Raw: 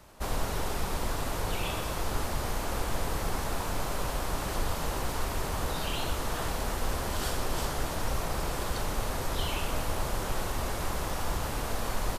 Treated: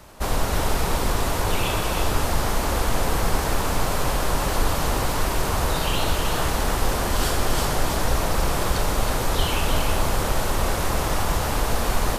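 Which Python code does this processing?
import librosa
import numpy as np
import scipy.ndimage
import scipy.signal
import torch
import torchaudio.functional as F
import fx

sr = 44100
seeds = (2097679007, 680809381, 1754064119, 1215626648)

y = x + 10.0 ** (-5.5 / 20.0) * np.pad(x, (int(316 * sr / 1000.0), 0))[:len(x)]
y = y * librosa.db_to_amplitude(8.0)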